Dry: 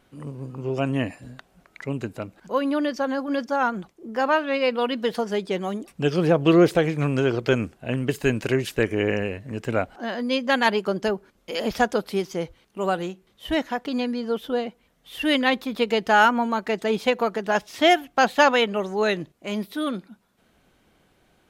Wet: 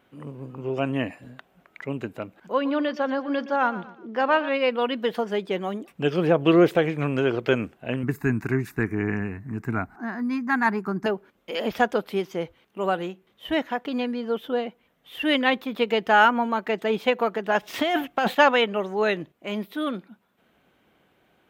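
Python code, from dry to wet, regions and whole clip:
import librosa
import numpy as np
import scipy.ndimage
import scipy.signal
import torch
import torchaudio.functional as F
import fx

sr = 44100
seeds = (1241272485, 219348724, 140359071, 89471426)

y = fx.chain(x, sr, fx.high_shelf_res(hz=6800.0, db=-9.0, q=1.5),
    fx.echo_feedback(ms=120, feedback_pct=37, wet_db=-15.5), at=(2.53, 4.49))
y = fx.chain(y, sr, fx.low_shelf(hz=460.0, db=7.0),
    fx.fixed_phaser(hz=1300.0, stages=4), at=(8.03, 11.06))
y = fx.chain(y, sr, fx.leveller(passes=1),
    fx.over_compress(threshold_db=-21.0, ratio=-1.0), at=(17.63, 18.35))
y = fx.highpass(y, sr, hz=170.0, slope=6)
y = fx.band_shelf(y, sr, hz=6900.0, db=-9.0, octaves=1.7)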